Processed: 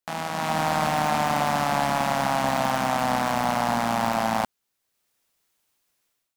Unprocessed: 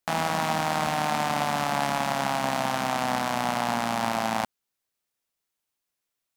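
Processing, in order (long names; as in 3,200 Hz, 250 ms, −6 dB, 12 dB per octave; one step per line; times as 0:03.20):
automatic gain control gain up to 15.5 dB
hard clipping −9 dBFS, distortion −13 dB
level −5 dB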